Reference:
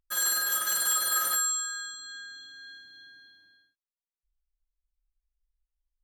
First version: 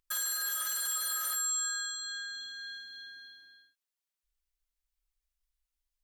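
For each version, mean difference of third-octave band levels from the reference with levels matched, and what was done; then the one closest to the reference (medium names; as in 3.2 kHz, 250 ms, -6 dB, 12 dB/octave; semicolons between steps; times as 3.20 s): 3.5 dB: peak limiter -26 dBFS, peak gain reduction 10.5 dB; tilt shelf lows -5.5 dB, about 850 Hz; compression 1.5:1, threshold -37 dBFS, peak gain reduction 4.5 dB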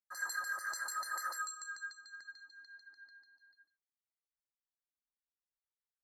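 6.0 dB: chorus voices 6, 0.71 Hz, delay 28 ms, depth 1.8 ms; LFO band-pass saw down 6.8 Hz 770–4200 Hz; brick-wall FIR band-stop 2.1–4.2 kHz; trim +2.5 dB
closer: first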